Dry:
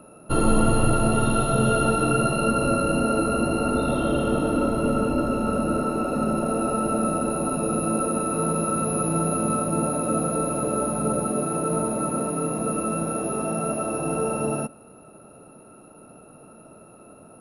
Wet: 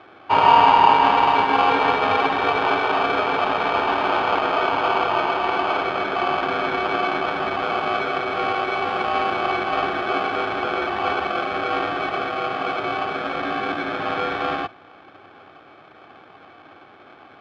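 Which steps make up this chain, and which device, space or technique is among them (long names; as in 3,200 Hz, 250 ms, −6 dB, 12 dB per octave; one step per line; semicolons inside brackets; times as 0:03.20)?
ring modulator pedal into a guitar cabinet (ring modulator with a square carrier 940 Hz; loudspeaker in its box 92–3,400 Hz, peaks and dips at 100 Hz +10 dB, 150 Hz +5 dB, 290 Hz +5 dB, 870 Hz +10 dB)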